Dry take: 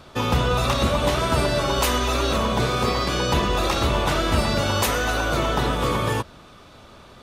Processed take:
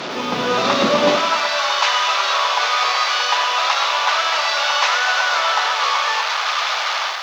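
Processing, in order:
linear delta modulator 32 kbit/s, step −19.5 dBFS
high-pass filter 200 Hz 24 dB per octave, from 0:01.17 800 Hz
automatic gain control gain up to 8.5 dB
high-frequency loss of the air 61 metres
feedback echo at a low word length 102 ms, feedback 55%, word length 7 bits, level −10.5 dB

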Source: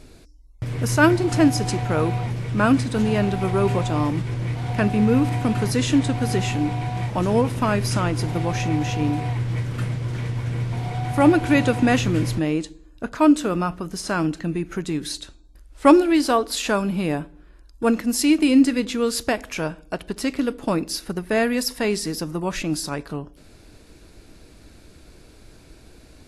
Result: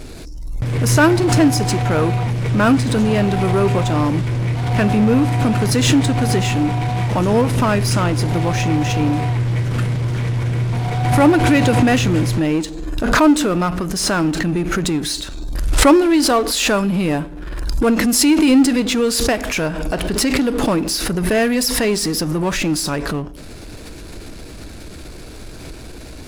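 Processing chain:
power curve on the samples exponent 0.7
background raised ahead of every attack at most 36 dB per second

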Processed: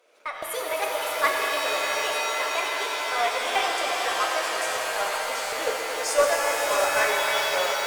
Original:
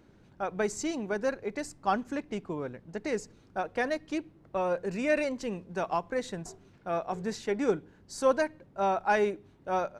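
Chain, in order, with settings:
gliding playback speed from 158% → 96%
camcorder AGC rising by 32 dB per second
high-pass filter 520 Hz 24 dB per octave
echo that builds up and dies away 86 ms, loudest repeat 5, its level −10.5 dB
flanger 0.25 Hz, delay 8.3 ms, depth 3.7 ms, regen −33%
in parallel at −4.5 dB: gain into a clipping stage and back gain 28.5 dB
on the sum: noise gate −26 dBFS, range −7 dB
parametric band 850 Hz −11.5 dB 0.27 octaves
buffer that repeats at 0:00.32/0:03.45/0:04.66/0:05.42, samples 512, times 8
reverb with rising layers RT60 3.4 s, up +7 semitones, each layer −2 dB, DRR 1.5 dB
level +7.5 dB

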